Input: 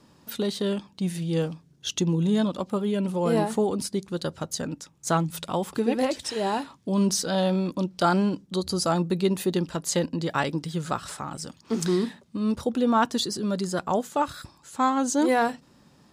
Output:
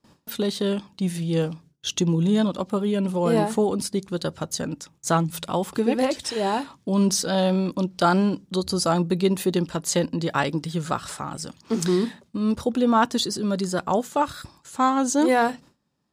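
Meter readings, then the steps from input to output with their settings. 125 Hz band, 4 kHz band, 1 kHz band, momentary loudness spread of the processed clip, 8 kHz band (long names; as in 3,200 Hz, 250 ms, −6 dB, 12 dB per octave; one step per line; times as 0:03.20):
+2.5 dB, +2.5 dB, +2.5 dB, 9 LU, +2.5 dB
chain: noise gate with hold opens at −44 dBFS
level +2.5 dB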